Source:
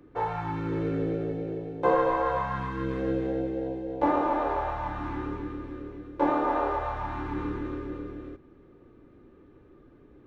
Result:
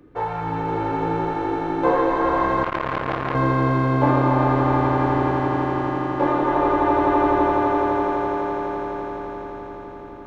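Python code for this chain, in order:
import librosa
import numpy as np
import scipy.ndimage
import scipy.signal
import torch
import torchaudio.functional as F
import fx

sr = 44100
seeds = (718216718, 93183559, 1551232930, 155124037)

y = fx.echo_swell(x, sr, ms=84, loudest=8, wet_db=-6)
y = fx.transformer_sat(y, sr, knee_hz=1500.0, at=(2.63, 3.35))
y = y * librosa.db_to_amplitude(3.5)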